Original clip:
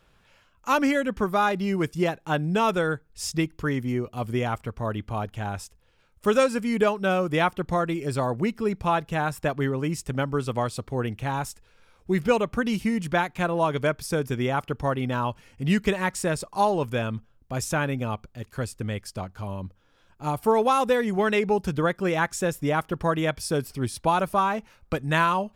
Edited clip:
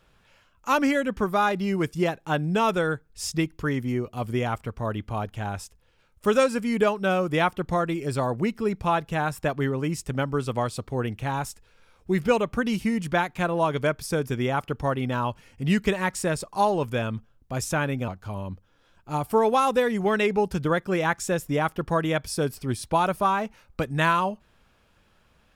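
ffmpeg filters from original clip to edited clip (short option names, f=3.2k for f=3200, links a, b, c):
-filter_complex "[0:a]asplit=2[a][b];[a]atrim=end=18.082[c];[b]atrim=start=19.208[d];[c][d]acrossfade=d=0.004:c1=hsin:c2=hsin"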